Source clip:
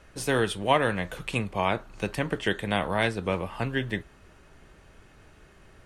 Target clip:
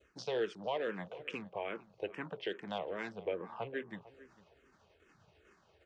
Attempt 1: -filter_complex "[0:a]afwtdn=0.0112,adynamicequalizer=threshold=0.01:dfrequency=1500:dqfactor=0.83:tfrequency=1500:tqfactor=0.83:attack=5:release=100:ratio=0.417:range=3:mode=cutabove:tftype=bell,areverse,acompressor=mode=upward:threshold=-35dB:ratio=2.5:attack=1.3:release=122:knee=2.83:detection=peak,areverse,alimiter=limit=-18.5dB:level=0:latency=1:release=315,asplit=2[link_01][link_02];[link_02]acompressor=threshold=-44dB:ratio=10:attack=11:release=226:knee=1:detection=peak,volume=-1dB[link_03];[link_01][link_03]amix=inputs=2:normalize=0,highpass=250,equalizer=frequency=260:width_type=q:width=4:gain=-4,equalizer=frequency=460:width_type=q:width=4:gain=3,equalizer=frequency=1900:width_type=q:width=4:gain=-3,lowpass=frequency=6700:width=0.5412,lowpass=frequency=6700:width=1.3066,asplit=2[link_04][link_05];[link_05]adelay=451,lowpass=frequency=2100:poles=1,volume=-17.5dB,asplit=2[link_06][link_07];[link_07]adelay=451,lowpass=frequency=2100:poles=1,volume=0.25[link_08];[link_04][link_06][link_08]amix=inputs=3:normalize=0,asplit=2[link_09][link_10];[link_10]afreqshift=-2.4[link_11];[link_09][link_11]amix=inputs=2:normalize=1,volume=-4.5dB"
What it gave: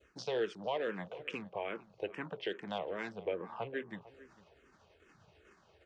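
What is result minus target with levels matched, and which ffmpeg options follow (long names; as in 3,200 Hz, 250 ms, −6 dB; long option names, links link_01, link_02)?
downward compressor: peak gain reduction −6.5 dB
-filter_complex "[0:a]afwtdn=0.0112,adynamicequalizer=threshold=0.01:dfrequency=1500:dqfactor=0.83:tfrequency=1500:tqfactor=0.83:attack=5:release=100:ratio=0.417:range=3:mode=cutabove:tftype=bell,areverse,acompressor=mode=upward:threshold=-35dB:ratio=2.5:attack=1.3:release=122:knee=2.83:detection=peak,areverse,alimiter=limit=-18.5dB:level=0:latency=1:release=315,asplit=2[link_01][link_02];[link_02]acompressor=threshold=-51.5dB:ratio=10:attack=11:release=226:knee=1:detection=peak,volume=-1dB[link_03];[link_01][link_03]amix=inputs=2:normalize=0,highpass=250,equalizer=frequency=260:width_type=q:width=4:gain=-4,equalizer=frequency=460:width_type=q:width=4:gain=3,equalizer=frequency=1900:width_type=q:width=4:gain=-3,lowpass=frequency=6700:width=0.5412,lowpass=frequency=6700:width=1.3066,asplit=2[link_04][link_05];[link_05]adelay=451,lowpass=frequency=2100:poles=1,volume=-17.5dB,asplit=2[link_06][link_07];[link_07]adelay=451,lowpass=frequency=2100:poles=1,volume=0.25[link_08];[link_04][link_06][link_08]amix=inputs=3:normalize=0,asplit=2[link_09][link_10];[link_10]afreqshift=-2.4[link_11];[link_09][link_11]amix=inputs=2:normalize=1,volume=-4.5dB"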